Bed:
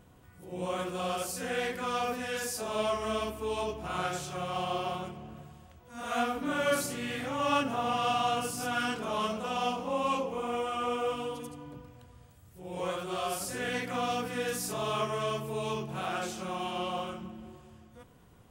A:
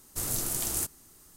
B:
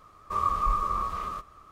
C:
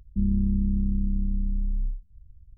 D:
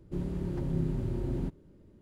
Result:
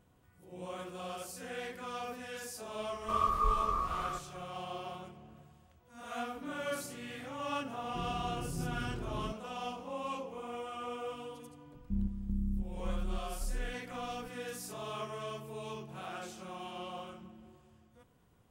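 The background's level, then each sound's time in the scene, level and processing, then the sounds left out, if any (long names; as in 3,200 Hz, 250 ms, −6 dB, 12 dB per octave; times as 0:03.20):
bed −9 dB
0:02.78: mix in B −4 dB
0:07.83: mix in D −8 dB
0:11.74: mix in C −9.5 dB + square-wave tremolo 1.8 Hz, depth 60%, duty 60%
not used: A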